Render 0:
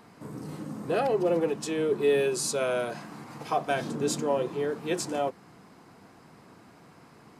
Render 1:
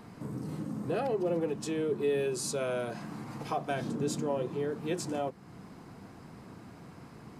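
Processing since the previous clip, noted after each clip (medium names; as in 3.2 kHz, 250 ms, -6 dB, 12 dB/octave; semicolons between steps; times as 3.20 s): bass shelf 210 Hz +12 dB; hum notches 50/100/150 Hz; compression 1.5:1, threshold -41 dBFS, peak gain reduction 9 dB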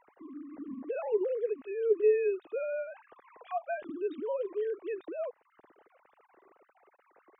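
formants replaced by sine waves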